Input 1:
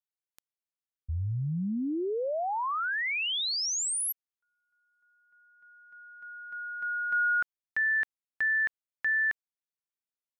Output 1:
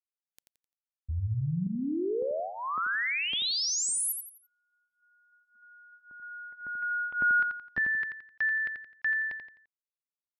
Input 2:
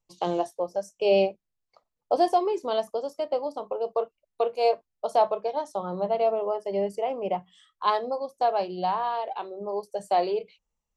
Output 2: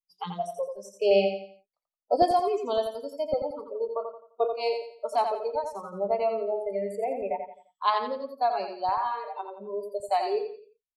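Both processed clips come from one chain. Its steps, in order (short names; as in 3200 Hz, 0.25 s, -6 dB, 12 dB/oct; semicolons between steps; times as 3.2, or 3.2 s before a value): LFO notch saw up 1.8 Hz 230–2400 Hz; spectral noise reduction 27 dB; feedback echo 86 ms, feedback 35%, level -6.5 dB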